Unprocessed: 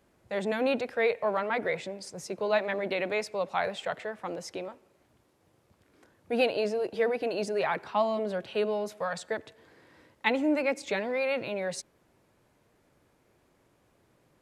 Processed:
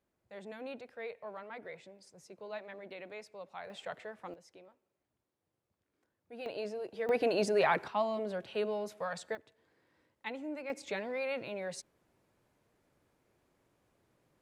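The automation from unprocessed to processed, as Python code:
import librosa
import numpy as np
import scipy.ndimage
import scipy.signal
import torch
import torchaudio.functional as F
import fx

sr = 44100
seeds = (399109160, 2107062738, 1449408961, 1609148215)

y = fx.gain(x, sr, db=fx.steps((0.0, -16.5), (3.7, -9.0), (4.34, -19.5), (6.46, -10.0), (7.09, 1.0), (7.88, -5.5), (9.35, -14.5), (10.7, -7.0)))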